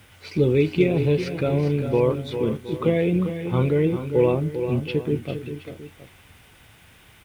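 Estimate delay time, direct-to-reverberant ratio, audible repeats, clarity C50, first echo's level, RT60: 0.399 s, none, 3, none, -9.5 dB, none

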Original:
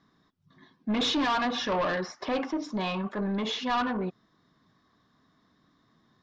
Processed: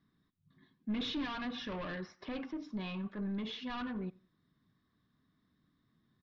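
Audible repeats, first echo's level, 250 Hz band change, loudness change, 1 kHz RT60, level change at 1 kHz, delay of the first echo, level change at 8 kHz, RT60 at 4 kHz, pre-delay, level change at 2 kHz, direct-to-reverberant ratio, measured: 2, -24.0 dB, -7.5 dB, -10.5 dB, none, -16.0 dB, 90 ms, n/a, none, none, -11.5 dB, none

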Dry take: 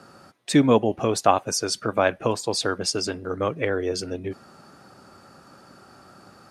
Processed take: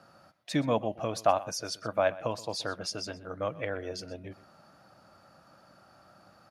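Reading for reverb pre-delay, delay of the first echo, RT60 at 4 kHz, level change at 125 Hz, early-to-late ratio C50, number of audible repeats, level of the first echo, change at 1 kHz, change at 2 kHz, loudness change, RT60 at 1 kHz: none, 0.124 s, none, -8.5 dB, none, 1, -18.5 dB, -7.0 dB, -8.5 dB, -8.5 dB, none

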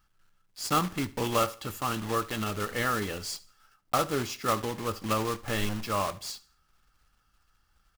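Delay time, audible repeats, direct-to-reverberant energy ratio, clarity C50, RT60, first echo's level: 73 ms, 2, none, none, none, -20.5 dB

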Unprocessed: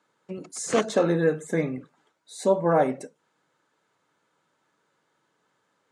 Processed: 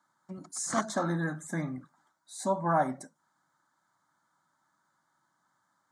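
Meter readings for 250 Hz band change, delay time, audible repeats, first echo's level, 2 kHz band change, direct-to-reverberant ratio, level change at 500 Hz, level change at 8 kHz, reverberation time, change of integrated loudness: -6.5 dB, none, none, none, -4.0 dB, none, -11.5 dB, -1.5 dB, none, -7.0 dB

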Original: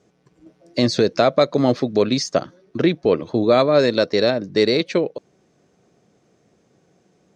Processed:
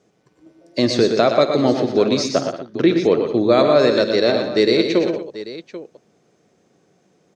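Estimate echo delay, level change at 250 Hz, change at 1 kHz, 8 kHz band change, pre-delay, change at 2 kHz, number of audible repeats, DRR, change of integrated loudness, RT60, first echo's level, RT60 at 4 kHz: 52 ms, +2.5 dB, +1.5 dB, +1.5 dB, none, +1.5 dB, 5, none, +2.0 dB, none, -16.5 dB, none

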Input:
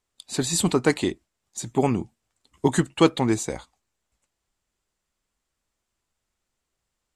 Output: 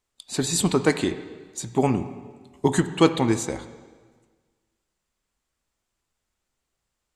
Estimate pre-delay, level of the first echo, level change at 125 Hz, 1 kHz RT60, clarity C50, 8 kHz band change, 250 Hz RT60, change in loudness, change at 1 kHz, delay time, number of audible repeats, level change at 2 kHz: 5 ms, none, +0.5 dB, 1.5 s, 11.5 dB, 0.0 dB, 1.6 s, +0.5 dB, +0.5 dB, none, none, +0.5 dB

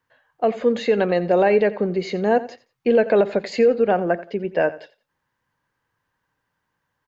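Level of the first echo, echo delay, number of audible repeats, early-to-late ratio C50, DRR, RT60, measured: -17.0 dB, 87 ms, 2, none, none, none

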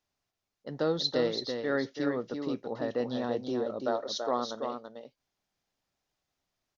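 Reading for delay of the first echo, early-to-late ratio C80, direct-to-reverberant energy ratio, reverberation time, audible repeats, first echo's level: 0.333 s, none, none, none, 1, -6.0 dB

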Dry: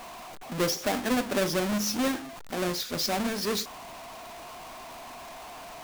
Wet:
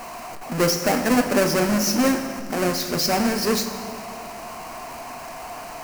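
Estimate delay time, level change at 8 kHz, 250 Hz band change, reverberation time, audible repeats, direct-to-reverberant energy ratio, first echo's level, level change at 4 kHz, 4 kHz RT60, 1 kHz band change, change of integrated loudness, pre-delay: none, +7.5 dB, +8.0 dB, 2.4 s, none, 7.0 dB, none, +5.0 dB, 1.8 s, +8.0 dB, +7.0 dB, 3 ms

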